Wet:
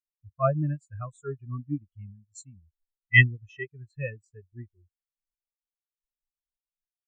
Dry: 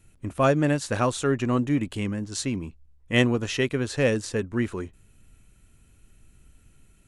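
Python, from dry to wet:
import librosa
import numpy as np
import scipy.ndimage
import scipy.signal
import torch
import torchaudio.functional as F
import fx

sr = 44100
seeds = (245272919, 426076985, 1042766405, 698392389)

y = fx.graphic_eq(x, sr, hz=(125, 250, 500, 1000, 8000), db=(-5, -11, -10, -5, 6))
y = fx.spectral_expand(y, sr, expansion=4.0)
y = y * 10.0 ** (5.5 / 20.0)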